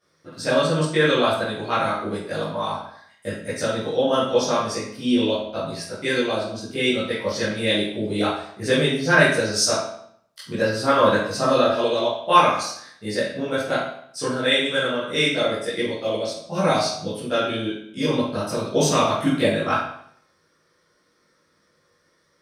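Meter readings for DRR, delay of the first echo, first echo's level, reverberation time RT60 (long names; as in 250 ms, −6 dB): −12.5 dB, no echo audible, no echo audible, 0.65 s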